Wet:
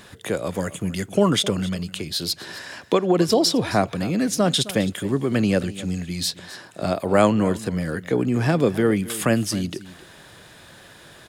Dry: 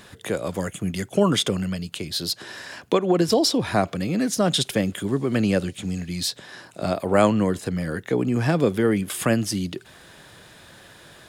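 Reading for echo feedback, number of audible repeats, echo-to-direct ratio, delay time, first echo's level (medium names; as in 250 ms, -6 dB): no regular repeats, 1, -17.0 dB, 263 ms, -17.0 dB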